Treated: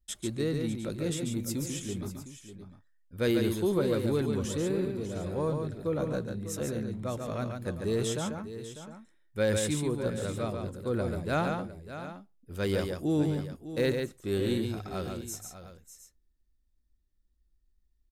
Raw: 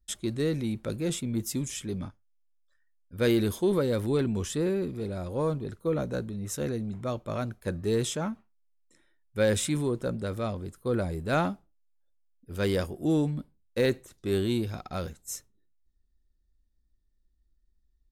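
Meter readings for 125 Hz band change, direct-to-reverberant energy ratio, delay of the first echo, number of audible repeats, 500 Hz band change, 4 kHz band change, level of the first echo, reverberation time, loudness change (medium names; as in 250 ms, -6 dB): -1.5 dB, no reverb, 141 ms, 3, -1.5 dB, -1.5 dB, -5.0 dB, no reverb, -1.5 dB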